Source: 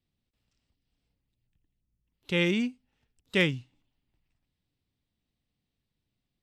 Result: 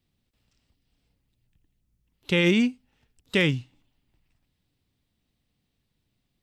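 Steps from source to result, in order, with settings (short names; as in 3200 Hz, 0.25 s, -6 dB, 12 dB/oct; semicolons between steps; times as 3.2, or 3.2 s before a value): limiter -18.5 dBFS, peak gain reduction 6 dB; gain +7 dB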